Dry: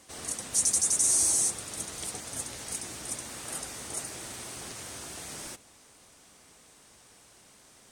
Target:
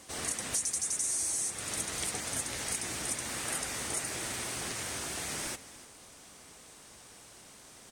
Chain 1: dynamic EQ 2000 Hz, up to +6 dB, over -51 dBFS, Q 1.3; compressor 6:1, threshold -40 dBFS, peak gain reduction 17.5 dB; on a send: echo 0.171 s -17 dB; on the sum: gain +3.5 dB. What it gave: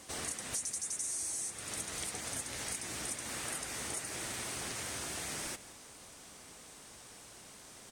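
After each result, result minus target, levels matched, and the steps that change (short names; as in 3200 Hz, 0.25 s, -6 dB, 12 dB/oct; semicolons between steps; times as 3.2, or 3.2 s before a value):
echo 0.12 s early; compressor: peak gain reduction +5.5 dB
change: echo 0.291 s -17 dB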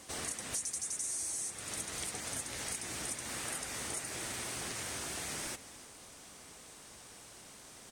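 compressor: peak gain reduction +5.5 dB
change: compressor 6:1, threshold -33.5 dBFS, peak gain reduction 12.5 dB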